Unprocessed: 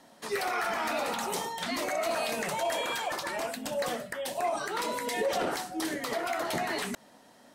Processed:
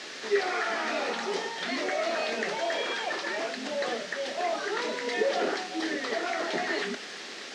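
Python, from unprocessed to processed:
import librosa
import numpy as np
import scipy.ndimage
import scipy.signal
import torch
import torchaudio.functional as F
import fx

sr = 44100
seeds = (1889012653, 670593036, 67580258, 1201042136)

y = fx.quant_dither(x, sr, seeds[0], bits=6, dither='triangular')
y = fx.cabinet(y, sr, low_hz=200.0, low_slope=24, high_hz=5500.0, hz=(400.0, 980.0, 1800.0), db=(7, -5, 5))
y = fx.doubler(y, sr, ms=27.0, db=-12)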